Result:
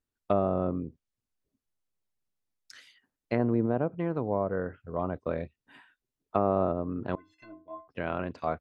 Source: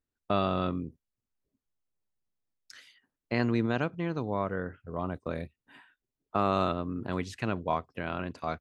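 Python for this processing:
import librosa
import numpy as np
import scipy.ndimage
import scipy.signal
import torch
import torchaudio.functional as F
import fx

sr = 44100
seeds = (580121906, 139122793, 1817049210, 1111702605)

y = fx.env_lowpass_down(x, sr, base_hz=860.0, full_db=-25.5)
y = fx.stiff_resonator(y, sr, f0_hz=310.0, decay_s=0.38, stiffness=0.03, at=(7.15, 7.88))
y = fx.dynamic_eq(y, sr, hz=560.0, q=1.2, threshold_db=-43.0, ratio=4.0, max_db=5)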